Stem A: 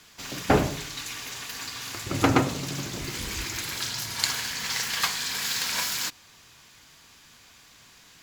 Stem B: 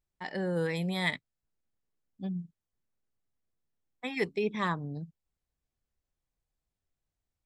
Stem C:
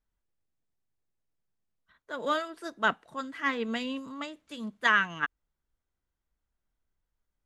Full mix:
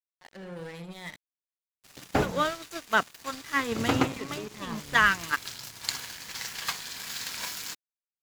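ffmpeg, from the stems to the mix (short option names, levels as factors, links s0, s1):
-filter_complex "[0:a]adelay=1650,volume=0.631[s0];[1:a]asoftclip=type=tanh:threshold=0.0422,volume=0.794,asplit=3[s1][s2][s3];[s2]volume=0.266[s4];[2:a]adelay=100,volume=1.41[s5];[s3]apad=whole_len=435413[s6];[s0][s6]sidechaincompress=threshold=0.00891:ratio=8:attack=48:release=107[s7];[s4]aecho=0:1:78:1[s8];[s7][s1][s5][s8]amix=inputs=4:normalize=0,aeval=exprs='sgn(val(0))*max(abs(val(0))-0.0119,0)':c=same"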